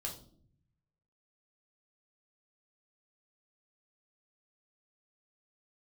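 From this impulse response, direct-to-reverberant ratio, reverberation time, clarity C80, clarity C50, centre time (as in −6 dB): −1.5 dB, non-exponential decay, 14.0 dB, 9.5 dB, 20 ms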